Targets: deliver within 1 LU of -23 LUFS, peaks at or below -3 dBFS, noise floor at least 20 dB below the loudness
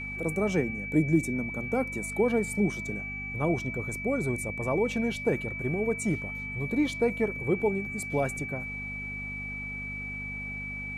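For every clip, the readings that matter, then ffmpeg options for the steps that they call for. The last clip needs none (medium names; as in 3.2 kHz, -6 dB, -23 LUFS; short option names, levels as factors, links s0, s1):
hum 50 Hz; highest harmonic 250 Hz; hum level -40 dBFS; steady tone 2.3 kHz; tone level -35 dBFS; loudness -29.5 LUFS; peak level -12.5 dBFS; loudness target -23.0 LUFS
-> -af "bandreject=f=50:t=h:w=4,bandreject=f=100:t=h:w=4,bandreject=f=150:t=h:w=4,bandreject=f=200:t=h:w=4,bandreject=f=250:t=h:w=4"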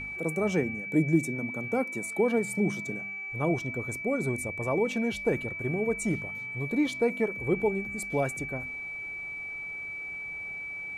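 hum not found; steady tone 2.3 kHz; tone level -35 dBFS
-> -af "bandreject=f=2300:w=30"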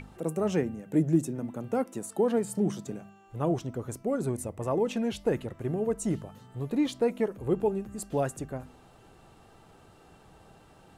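steady tone not found; loudness -30.5 LUFS; peak level -13.0 dBFS; loudness target -23.0 LUFS
-> -af "volume=2.37"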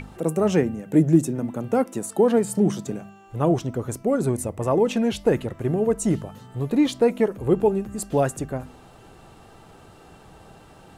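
loudness -23.0 LUFS; peak level -5.5 dBFS; noise floor -49 dBFS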